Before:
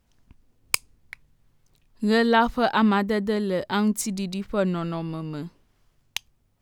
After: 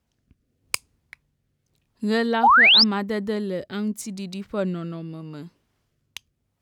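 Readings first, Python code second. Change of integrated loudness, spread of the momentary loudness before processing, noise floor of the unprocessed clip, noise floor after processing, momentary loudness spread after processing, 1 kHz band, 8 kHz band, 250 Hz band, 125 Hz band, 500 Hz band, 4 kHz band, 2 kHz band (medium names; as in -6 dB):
+5.0 dB, 15 LU, -68 dBFS, -75 dBFS, 21 LU, +3.5 dB, -4.0 dB, -3.0 dB, -3.0 dB, -3.0 dB, +12.5 dB, +8.0 dB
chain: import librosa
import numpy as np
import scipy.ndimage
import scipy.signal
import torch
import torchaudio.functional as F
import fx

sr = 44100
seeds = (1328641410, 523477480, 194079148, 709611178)

y = scipy.signal.sosfilt(scipy.signal.butter(2, 59.0, 'highpass', fs=sr, output='sos'), x)
y = fx.rotary(y, sr, hz=0.85)
y = fx.spec_paint(y, sr, seeds[0], shape='rise', start_s=2.43, length_s=0.41, low_hz=730.0, high_hz=5500.0, level_db=-12.0)
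y = F.gain(torch.from_numpy(y), -1.5).numpy()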